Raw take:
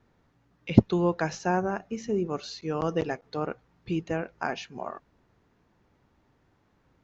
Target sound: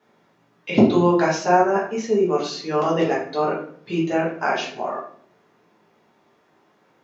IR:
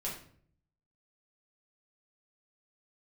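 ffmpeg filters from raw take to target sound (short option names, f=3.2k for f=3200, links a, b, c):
-filter_complex "[0:a]highpass=320[a];[1:a]atrim=start_sample=2205[b];[a][b]afir=irnorm=-1:irlink=0,volume=8.5dB"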